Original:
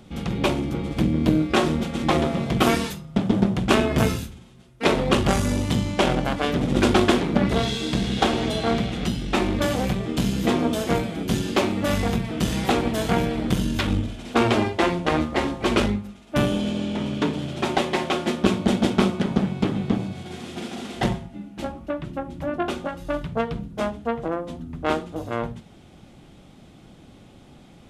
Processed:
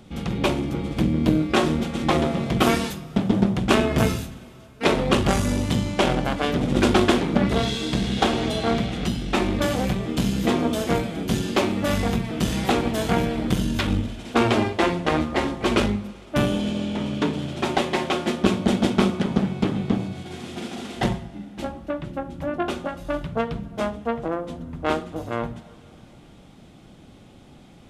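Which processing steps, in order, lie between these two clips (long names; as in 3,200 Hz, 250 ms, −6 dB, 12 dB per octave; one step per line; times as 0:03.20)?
dense smooth reverb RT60 3.6 s, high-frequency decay 0.9×, DRR 19 dB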